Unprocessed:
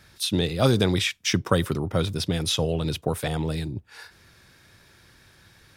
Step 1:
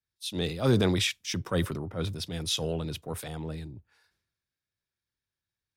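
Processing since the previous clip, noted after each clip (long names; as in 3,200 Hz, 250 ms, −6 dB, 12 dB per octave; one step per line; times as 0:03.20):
transient designer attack −6 dB, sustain +4 dB
multiband upward and downward expander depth 100%
level −7 dB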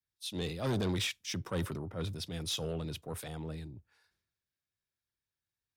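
soft clipping −23.5 dBFS, distortion −11 dB
level −4 dB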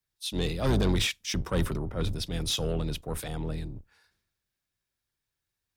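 sub-octave generator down 2 octaves, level −1 dB
level +6 dB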